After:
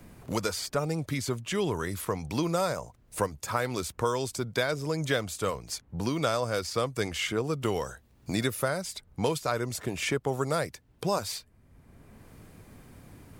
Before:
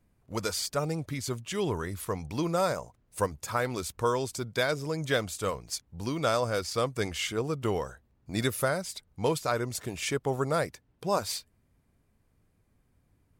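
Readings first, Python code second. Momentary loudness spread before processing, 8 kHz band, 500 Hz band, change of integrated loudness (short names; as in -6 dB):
7 LU, 0.0 dB, 0.0 dB, 0.0 dB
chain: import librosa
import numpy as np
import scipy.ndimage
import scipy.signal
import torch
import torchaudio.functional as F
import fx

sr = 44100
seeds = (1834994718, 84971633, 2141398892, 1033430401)

y = fx.band_squash(x, sr, depth_pct=70)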